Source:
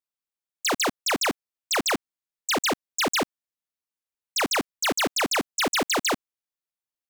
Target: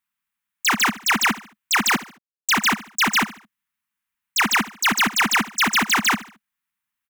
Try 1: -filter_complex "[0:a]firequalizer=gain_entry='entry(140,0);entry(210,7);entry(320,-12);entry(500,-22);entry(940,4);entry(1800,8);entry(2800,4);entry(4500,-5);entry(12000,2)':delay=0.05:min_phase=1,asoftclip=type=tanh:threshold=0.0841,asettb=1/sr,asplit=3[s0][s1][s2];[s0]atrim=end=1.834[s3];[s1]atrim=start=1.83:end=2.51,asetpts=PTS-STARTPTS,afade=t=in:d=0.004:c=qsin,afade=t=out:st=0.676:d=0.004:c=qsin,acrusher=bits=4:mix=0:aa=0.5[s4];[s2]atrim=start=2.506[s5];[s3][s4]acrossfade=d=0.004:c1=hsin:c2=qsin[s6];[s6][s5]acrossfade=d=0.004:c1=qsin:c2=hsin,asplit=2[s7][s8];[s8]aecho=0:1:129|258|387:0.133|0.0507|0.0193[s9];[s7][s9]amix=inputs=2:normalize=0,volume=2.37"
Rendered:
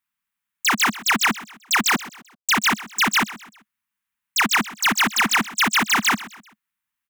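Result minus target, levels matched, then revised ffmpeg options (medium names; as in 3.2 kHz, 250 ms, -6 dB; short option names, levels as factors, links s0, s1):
echo 56 ms late
-filter_complex "[0:a]firequalizer=gain_entry='entry(140,0);entry(210,7);entry(320,-12);entry(500,-22);entry(940,4);entry(1800,8);entry(2800,4);entry(4500,-5);entry(12000,2)':delay=0.05:min_phase=1,asoftclip=type=tanh:threshold=0.0841,asettb=1/sr,asplit=3[s0][s1][s2];[s0]atrim=end=1.834[s3];[s1]atrim=start=1.83:end=2.51,asetpts=PTS-STARTPTS,afade=t=in:d=0.004:c=qsin,afade=t=out:st=0.676:d=0.004:c=qsin,acrusher=bits=4:mix=0:aa=0.5[s4];[s2]atrim=start=2.506[s5];[s3][s4]acrossfade=d=0.004:c1=hsin:c2=qsin[s6];[s6][s5]acrossfade=d=0.004:c1=qsin:c2=hsin,asplit=2[s7][s8];[s8]aecho=0:1:73|146|219:0.133|0.0507|0.0193[s9];[s7][s9]amix=inputs=2:normalize=0,volume=2.37"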